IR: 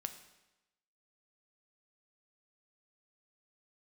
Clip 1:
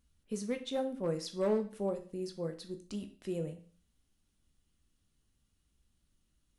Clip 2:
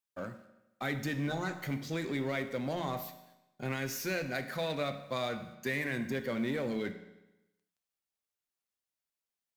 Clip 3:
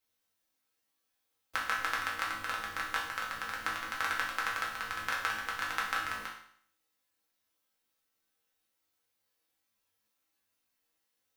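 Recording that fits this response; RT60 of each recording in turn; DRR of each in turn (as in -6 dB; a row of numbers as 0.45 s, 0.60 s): 2; 0.40 s, 1.0 s, 0.60 s; 6.0 dB, 8.0 dB, -5.0 dB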